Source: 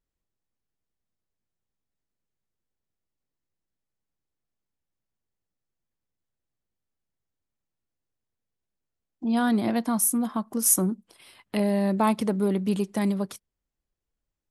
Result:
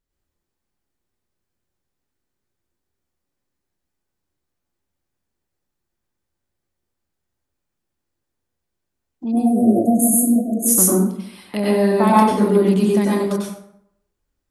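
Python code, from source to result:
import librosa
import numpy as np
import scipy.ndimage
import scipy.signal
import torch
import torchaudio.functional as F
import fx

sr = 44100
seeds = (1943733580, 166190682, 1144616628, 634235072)

y = fx.brickwall_bandstop(x, sr, low_hz=730.0, high_hz=6300.0, at=(9.3, 10.67), fade=0.02)
y = fx.rev_plate(y, sr, seeds[0], rt60_s=0.72, hf_ratio=0.6, predelay_ms=85, drr_db=-5.5)
y = y * librosa.db_to_amplitude(2.5)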